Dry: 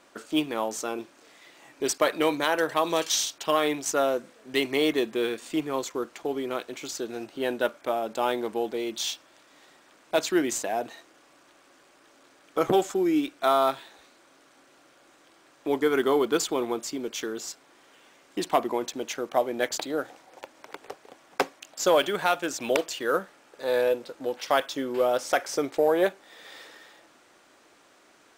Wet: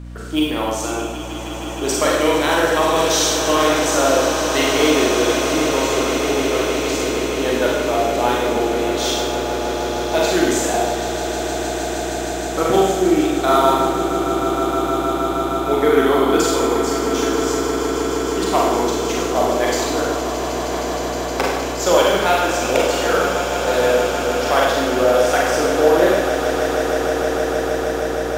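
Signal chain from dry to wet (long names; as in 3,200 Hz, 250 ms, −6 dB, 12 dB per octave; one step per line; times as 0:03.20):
echo that builds up and dies away 156 ms, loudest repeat 8, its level −12.5 dB
four-comb reverb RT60 1.1 s, combs from 33 ms, DRR −3.5 dB
mains hum 60 Hz, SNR 15 dB
level +3 dB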